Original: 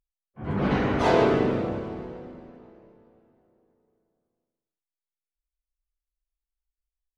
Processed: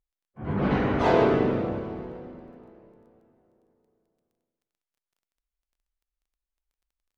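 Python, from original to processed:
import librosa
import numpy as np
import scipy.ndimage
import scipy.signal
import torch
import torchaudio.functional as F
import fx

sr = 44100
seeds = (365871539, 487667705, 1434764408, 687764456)

y = fx.lowpass(x, sr, hz=3200.0, slope=6)
y = fx.dmg_crackle(y, sr, seeds[0], per_s=14.0, level_db=-60.0)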